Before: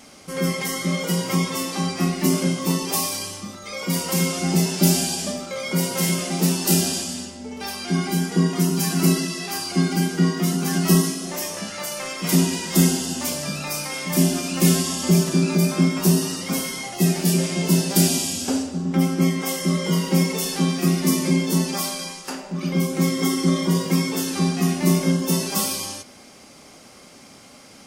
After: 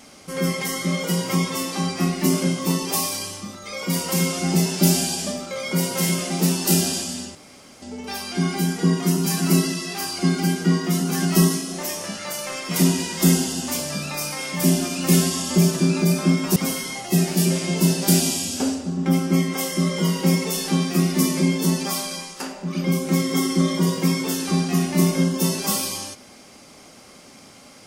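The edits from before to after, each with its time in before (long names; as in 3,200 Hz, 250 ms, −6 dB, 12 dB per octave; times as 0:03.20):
0:07.35: splice in room tone 0.47 s
0:16.09–0:16.44: remove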